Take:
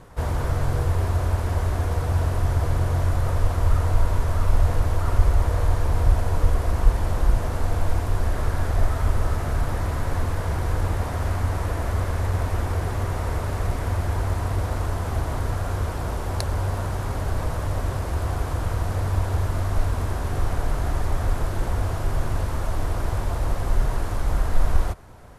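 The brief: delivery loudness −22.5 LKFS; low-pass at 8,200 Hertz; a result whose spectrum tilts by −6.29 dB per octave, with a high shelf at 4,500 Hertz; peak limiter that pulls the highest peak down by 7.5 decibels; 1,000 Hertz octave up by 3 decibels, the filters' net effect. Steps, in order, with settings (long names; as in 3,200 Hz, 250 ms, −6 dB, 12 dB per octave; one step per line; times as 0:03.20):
low-pass filter 8,200 Hz
parametric band 1,000 Hz +3.5 dB
high-shelf EQ 4,500 Hz +4 dB
level +3 dB
brickwall limiter −8.5 dBFS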